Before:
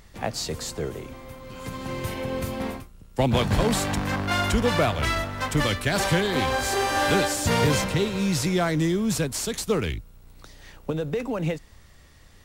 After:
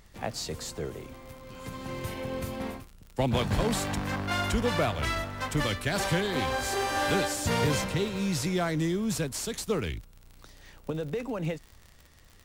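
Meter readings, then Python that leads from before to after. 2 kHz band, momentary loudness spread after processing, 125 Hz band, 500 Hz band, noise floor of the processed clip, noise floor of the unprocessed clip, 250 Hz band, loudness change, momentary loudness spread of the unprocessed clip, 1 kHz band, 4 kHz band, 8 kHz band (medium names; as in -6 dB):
-5.0 dB, 13 LU, -5.0 dB, -5.0 dB, -55 dBFS, -51 dBFS, -5.0 dB, -5.0 dB, 13 LU, -5.0 dB, -5.0 dB, -5.0 dB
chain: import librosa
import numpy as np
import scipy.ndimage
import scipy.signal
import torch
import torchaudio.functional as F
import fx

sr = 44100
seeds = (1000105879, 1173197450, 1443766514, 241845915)

y = fx.dmg_crackle(x, sr, seeds[0], per_s=64.0, level_db=-34.0)
y = F.gain(torch.from_numpy(y), -5.0).numpy()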